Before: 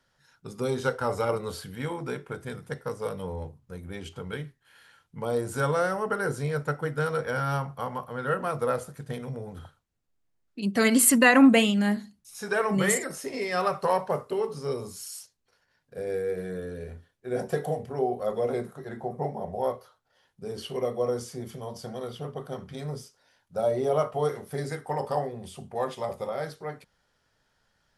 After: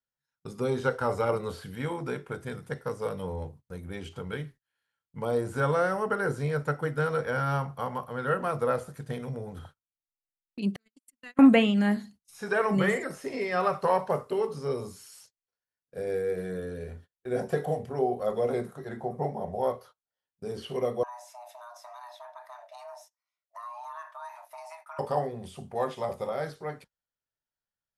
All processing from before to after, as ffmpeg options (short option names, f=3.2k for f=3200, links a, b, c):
-filter_complex "[0:a]asettb=1/sr,asplit=3[a][b][c];[a]atrim=end=10.764[d];[b]atrim=start=10.76:end=11.39,asetpts=PTS-STARTPTS,afade=t=in:d=0.004:c=qsin,afade=t=out:st=0.626:d=0.004:c=qsin,agate=range=-54dB:threshold=-15dB:ratio=16:release=100:detection=peak,equalizer=f=730:w=0.65:g=-11.5,acompressor=threshold=-42dB:ratio=5:attack=3.2:release=140:knee=1:detection=peak[e];[c]atrim=start=11.386[f];[d][e]acrossfade=d=0.004:c1=hsin:c2=qsin[g];[g][f]acrossfade=d=0.004:c1=qsin:c2=hsin,asettb=1/sr,asplit=3[h][i][j];[h]atrim=end=21.034[k];[i]atrim=start=21.03:end=24.99,asetpts=PTS-STARTPTS,afade=t=in:d=0.004:c=qsin,afade=t=out:st=3.956:d=0.004:c=qsin,acompressor=threshold=-47dB:ratio=2.5:attack=3.2:release=140:knee=1:detection=peak,afreqshift=490[l];[j]atrim=start=24.986[m];[k][l]acrossfade=d=0.004:c1=hsin:c2=qsin[n];[n][m]acrossfade=d=0.004:c1=qsin:c2=hsin,agate=range=-27dB:threshold=-49dB:ratio=16:detection=peak,acrossover=split=3100[o][p];[p]acompressor=threshold=-49dB:ratio=4:attack=1:release=60[q];[o][q]amix=inputs=2:normalize=0"